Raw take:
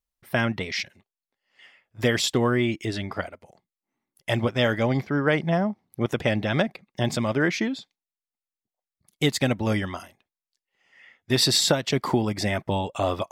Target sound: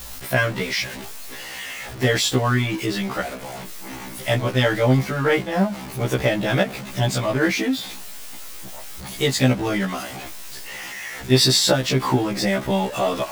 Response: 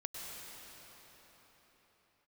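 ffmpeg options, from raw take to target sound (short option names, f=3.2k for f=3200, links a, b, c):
-af "aeval=exprs='val(0)+0.5*0.0299*sgn(val(0))':c=same,afftfilt=real='re*1.73*eq(mod(b,3),0)':imag='im*1.73*eq(mod(b,3),0)':win_size=2048:overlap=0.75,volume=5dB"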